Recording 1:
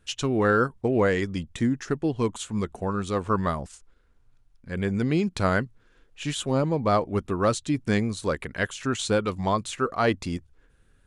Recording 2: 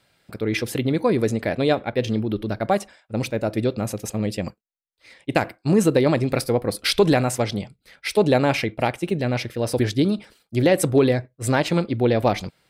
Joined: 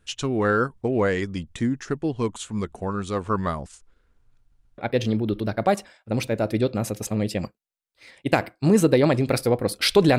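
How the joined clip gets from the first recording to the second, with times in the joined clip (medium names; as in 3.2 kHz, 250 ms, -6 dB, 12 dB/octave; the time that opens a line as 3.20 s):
recording 1
4.39 s: stutter in place 0.13 s, 3 plays
4.78 s: go over to recording 2 from 1.81 s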